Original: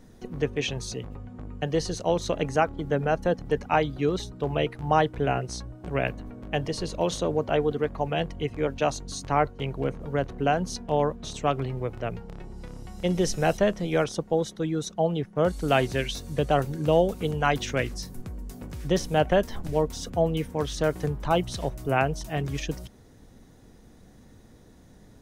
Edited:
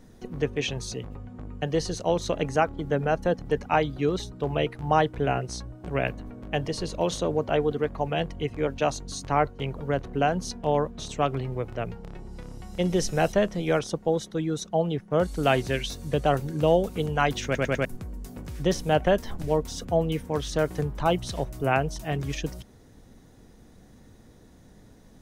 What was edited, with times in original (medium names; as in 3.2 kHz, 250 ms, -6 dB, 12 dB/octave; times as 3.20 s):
9.76–10.01 s: delete
17.70 s: stutter in place 0.10 s, 4 plays